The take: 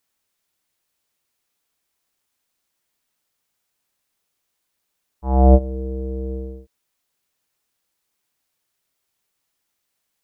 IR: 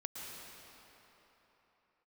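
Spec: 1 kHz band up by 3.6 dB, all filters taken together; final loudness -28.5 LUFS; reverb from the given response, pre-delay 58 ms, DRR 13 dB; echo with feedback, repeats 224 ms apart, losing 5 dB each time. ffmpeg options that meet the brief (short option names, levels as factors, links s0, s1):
-filter_complex "[0:a]equalizer=f=1000:t=o:g=6,aecho=1:1:224|448|672|896|1120|1344|1568:0.562|0.315|0.176|0.0988|0.0553|0.031|0.0173,asplit=2[s0][s1];[1:a]atrim=start_sample=2205,adelay=58[s2];[s1][s2]afir=irnorm=-1:irlink=0,volume=0.237[s3];[s0][s3]amix=inputs=2:normalize=0,volume=0.299"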